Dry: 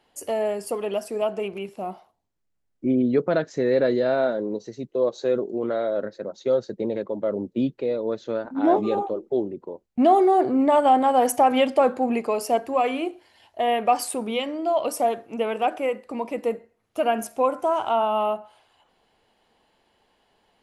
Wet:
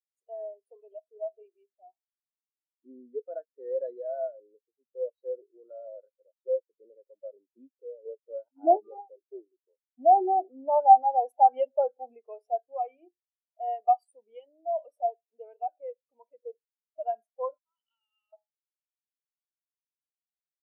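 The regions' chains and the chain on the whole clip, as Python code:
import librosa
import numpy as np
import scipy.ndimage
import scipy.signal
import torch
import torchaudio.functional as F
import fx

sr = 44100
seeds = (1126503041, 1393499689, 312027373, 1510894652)

y = fx.chain(x, sr, fx.highpass(hz=370.0, slope=12),
    fx.low_shelf(hz=480.0, db=10.5), at=(8.05, 8.81))
y = fx.chain(y, sr, fx.bessel_highpass(hz=2600.0, order=4),
    fx.high_shelf(hz=3900.0, db=6.5), at=(17.58, 18.33))
y = scipy.signal.sosfilt(scipy.signal.butter(2, 470.0, 'highpass', fs=sr, output='sos'), y)
y = fx.notch(y, sr, hz=1100.0, q=18.0)
y = fx.spectral_expand(y, sr, expansion=2.5)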